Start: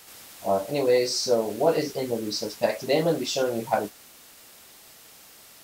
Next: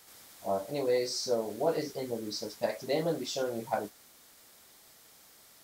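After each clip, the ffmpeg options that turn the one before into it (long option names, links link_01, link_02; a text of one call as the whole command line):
ffmpeg -i in.wav -af "equalizer=frequency=2700:width=6:gain=-6,volume=-7.5dB" out.wav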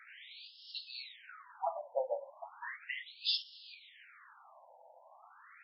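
ffmpeg -i in.wav -af "acompressor=threshold=-36dB:ratio=4,afftfilt=real='re*between(b*sr/1024,690*pow(3900/690,0.5+0.5*sin(2*PI*0.36*pts/sr))/1.41,690*pow(3900/690,0.5+0.5*sin(2*PI*0.36*pts/sr))*1.41)':imag='im*between(b*sr/1024,690*pow(3900/690,0.5+0.5*sin(2*PI*0.36*pts/sr))/1.41,690*pow(3900/690,0.5+0.5*sin(2*PI*0.36*pts/sr))*1.41)':win_size=1024:overlap=0.75,volume=11dB" out.wav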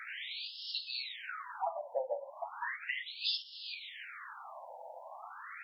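ffmpeg -i in.wav -af "acompressor=threshold=-49dB:ratio=2.5,volume=11dB" out.wav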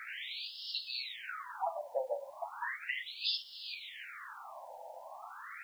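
ffmpeg -i in.wav -af "acrusher=bits=10:mix=0:aa=0.000001" out.wav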